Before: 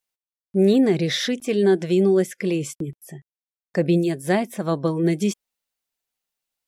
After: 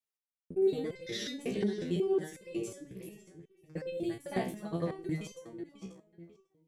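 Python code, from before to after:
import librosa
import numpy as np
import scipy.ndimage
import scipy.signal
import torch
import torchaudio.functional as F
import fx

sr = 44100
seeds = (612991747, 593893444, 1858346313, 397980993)

y = fx.local_reverse(x, sr, ms=56.0)
y = fx.echo_filtered(y, sr, ms=542, feedback_pct=23, hz=4700.0, wet_db=-10.5)
y = fx.resonator_held(y, sr, hz=5.5, low_hz=63.0, high_hz=520.0)
y = F.gain(torch.from_numpy(y), -3.0).numpy()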